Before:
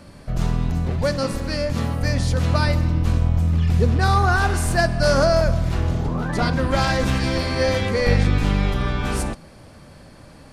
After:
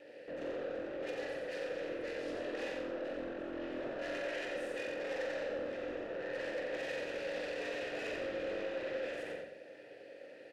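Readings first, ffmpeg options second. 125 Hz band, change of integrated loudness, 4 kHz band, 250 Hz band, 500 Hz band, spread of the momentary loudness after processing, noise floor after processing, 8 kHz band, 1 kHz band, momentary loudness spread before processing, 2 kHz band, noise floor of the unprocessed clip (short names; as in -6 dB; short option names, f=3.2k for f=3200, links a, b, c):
under -40 dB, -19.0 dB, -19.0 dB, -20.5 dB, -13.5 dB, 6 LU, -54 dBFS, -25.5 dB, -24.0 dB, 7 LU, -16.0 dB, -45 dBFS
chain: -filter_complex "[0:a]equalizer=f=400:t=o:w=0.24:g=5.5,bandreject=f=65.11:t=h:w=4,bandreject=f=130.22:t=h:w=4,afreqshift=46,asplit=2[a][b];[b]acompressor=threshold=-31dB:ratio=6,volume=0.5dB[c];[a][c]amix=inputs=2:normalize=0,aeval=exprs='val(0)*sin(2*PI*150*n/s)':c=same,aeval=exprs='abs(val(0))':c=same,asplit=3[d][e][f];[d]bandpass=f=530:t=q:w=8,volume=0dB[g];[e]bandpass=f=1.84k:t=q:w=8,volume=-6dB[h];[f]bandpass=f=2.48k:t=q:w=8,volume=-9dB[i];[g][h][i]amix=inputs=3:normalize=0,alimiter=level_in=6dB:limit=-24dB:level=0:latency=1:release=20,volume=-6dB,asoftclip=type=tanh:threshold=-39dB,asplit=2[j][k];[k]adelay=44,volume=-6dB[l];[j][l]amix=inputs=2:normalize=0,asplit=2[m][n];[n]aecho=0:1:89|178|267|356|445:0.631|0.246|0.096|0.0374|0.0146[o];[m][o]amix=inputs=2:normalize=0,volume=1dB"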